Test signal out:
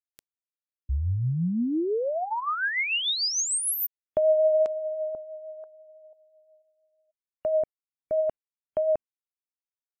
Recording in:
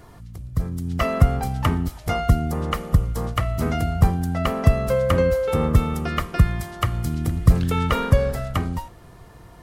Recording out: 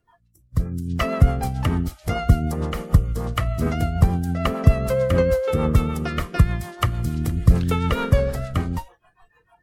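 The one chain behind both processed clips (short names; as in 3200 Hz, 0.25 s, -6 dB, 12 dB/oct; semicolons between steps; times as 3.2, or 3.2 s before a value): rotary speaker horn 6.7 Hz; spectral noise reduction 25 dB; gain +2 dB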